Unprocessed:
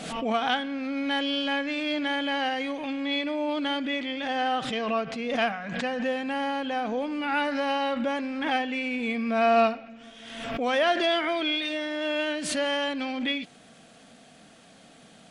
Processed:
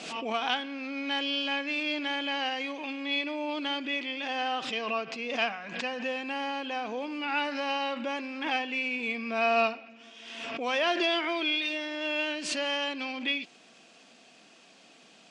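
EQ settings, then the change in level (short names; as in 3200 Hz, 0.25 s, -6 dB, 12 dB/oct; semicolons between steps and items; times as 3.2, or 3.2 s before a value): speaker cabinet 220–7300 Hz, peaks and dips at 360 Hz +7 dB, 1000 Hz +6 dB, 2600 Hz +9 dB, 5000 Hz +4 dB; high shelf 4900 Hz +9 dB; -6.5 dB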